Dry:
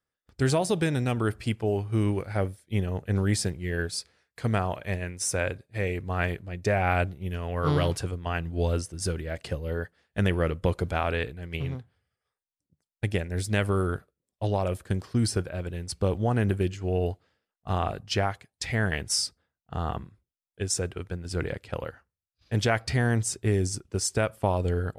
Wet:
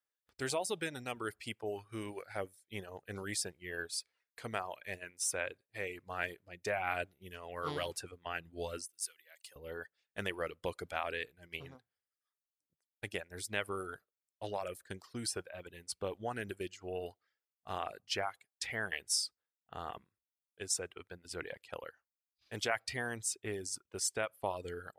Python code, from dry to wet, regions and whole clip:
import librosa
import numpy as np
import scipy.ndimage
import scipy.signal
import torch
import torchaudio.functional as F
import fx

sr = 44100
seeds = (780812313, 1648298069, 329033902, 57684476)

y = fx.chain(x, sr, fx.differentiator(),
    fx.quant_companded(bits=8), at=(8.86, 9.56))
y = librosa.effects.preemphasis(y, coef=0.8, zi=[0.0])
y = fx.dereverb_blind(y, sr, rt60_s=0.72)
y = fx.bass_treble(y, sr, bass_db=-13, treble_db=-10)
y = y * 10.0 ** (4.5 / 20.0)